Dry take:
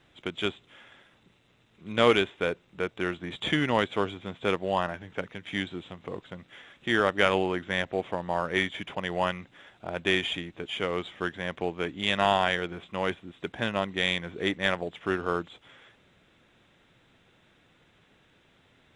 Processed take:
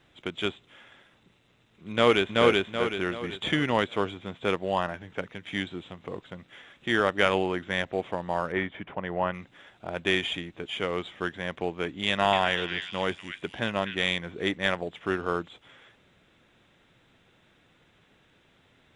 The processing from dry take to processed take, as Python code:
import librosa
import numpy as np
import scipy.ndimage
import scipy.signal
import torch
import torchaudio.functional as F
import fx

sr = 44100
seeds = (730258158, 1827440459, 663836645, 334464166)

y = fx.echo_throw(x, sr, start_s=1.91, length_s=0.44, ms=380, feedback_pct=40, wet_db=-0.5)
y = fx.lowpass(y, sr, hz=1800.0, slope=12, at=(8.52, 9.34))
y = fx.echo_stepped(y, sr, ms=245, hz=2400.0, octaves=0.7, feedback_pct=70, wet_db=-3.0, at=(12.08, 14.1))